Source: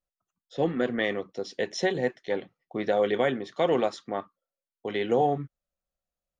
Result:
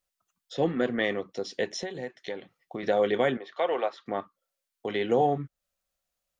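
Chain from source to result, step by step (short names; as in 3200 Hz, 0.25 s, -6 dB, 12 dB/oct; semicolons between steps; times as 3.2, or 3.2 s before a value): 1.76–2.83 compressor 6:1, threshold -33 dBFS, peak gain reduction 12 dB; 3.37–4.06 three-band isolator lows -24 dB, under 420 Hz, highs -21 dB, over 3700 Hz; mismatched tape noise reduction encoder only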